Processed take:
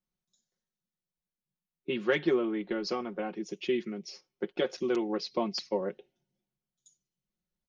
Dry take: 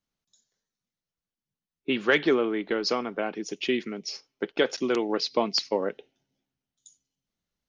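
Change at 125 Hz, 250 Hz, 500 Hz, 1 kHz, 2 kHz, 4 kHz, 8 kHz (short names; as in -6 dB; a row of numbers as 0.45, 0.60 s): -1.0 dB, -3.0 dB, -4.0 dB, -6.0 dB, -8.5 dB, -9.0 dB, n/a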